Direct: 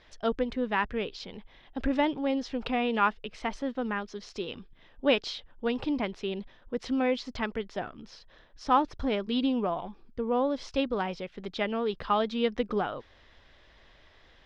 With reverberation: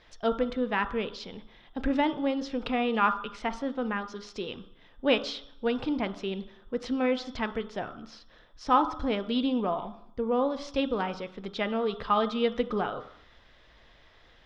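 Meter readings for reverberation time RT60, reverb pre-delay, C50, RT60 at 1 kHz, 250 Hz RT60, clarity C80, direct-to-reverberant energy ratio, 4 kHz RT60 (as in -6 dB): 0.70 s, 3 ms, 12.5 dB, 0.70 s, 0.80 s, 16.0 dB, 8.5 dB, 0.70 s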